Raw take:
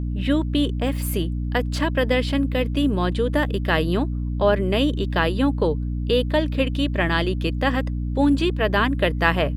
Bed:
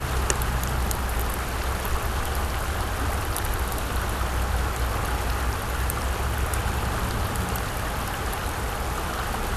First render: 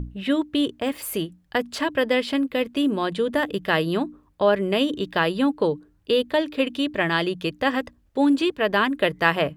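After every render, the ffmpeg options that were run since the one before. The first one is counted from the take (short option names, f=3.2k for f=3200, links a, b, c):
-af "bandreject=f=60:t=h:w=6,bandreject=f=120:t=h:w=6,bandreject=f=180:t=h:w=6,bandreject=f=240:t=h:w=6,bandreject=f=300:t=h:w=6"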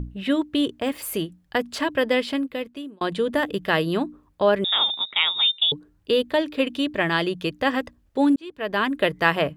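-filter_complex "[0:a]asettb=1/sr,asplit=3[a][b][c];[a]atrim=end=4.644[d];[b]atrim=start=4.64:end=5.72,asetpts=PTS-STARTPTS,afade=t=in:d=0.004:c=qsin,afade=t=out:st=1.076:d=0.004:c=qsin,lowpass=f=3.3k:t=q:w=0.5098,lowpass=f=3.3k:t=q:w=0.6013,lowpass=f=3.3k:t=q:w=0.9,lowpass=f=3.3k:t=q:w=2.563,afreqshift=-3900[e];[c]atrim=start=5.716[f];[d][e]acrossfade=d=0.004:c1=hsin:c2=qsin[g];[g][f]acrossfade=d=0.004:c1=qsin:c2=hsin,asplit=3[h][i][j];[h]atrim=end=3.01,asetpts=PTS-STARTPTS,afade=t=out:st=2.19:d=0.82[k];[i]atrim=start=3.01:end=8.36,asetpts=PTS-STARTPTS,afade=t=in:d=0.004:c=hsin,afade=t=out:st=5.346:d=0.004:c=hsin[l];[j]atrim=start=8.36,asetpts=PTS-STARTPTS,afade=t=in:d=0.58[m];[k][l][m]concat=n=3:v=0:a=1"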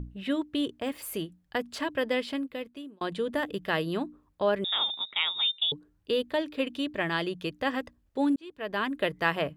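-af "volume=-7dB"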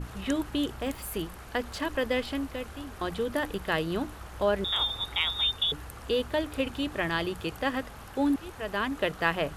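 -filter_complex "[1:a]volume=-17dB[a];[0:a][a]amix=inputs=2:normalize=0"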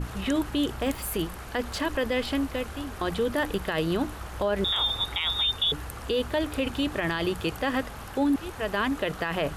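-af "acontrast=28,alimiter=limit=-17.5dB:level=0:latency=1:release=31"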